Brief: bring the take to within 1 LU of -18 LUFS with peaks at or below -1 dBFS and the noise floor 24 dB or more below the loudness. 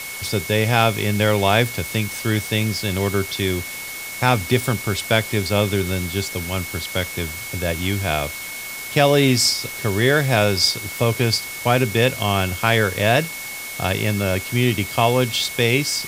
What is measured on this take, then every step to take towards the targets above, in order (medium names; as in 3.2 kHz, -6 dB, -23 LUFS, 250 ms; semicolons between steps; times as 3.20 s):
steady tone 2.2 kHz; tone level -32 dBFS; noise floor -32 dBFS; noise floor target -44 dBFS; loudness -20.0 LUFS; peak level -1.5 dBFS; loudness target -18.0 LUFS
-> band-stop 2.2 kHz, Q 30; noise print and reduce 12 dB; trim +2 dB; peak limiter -1 dBFS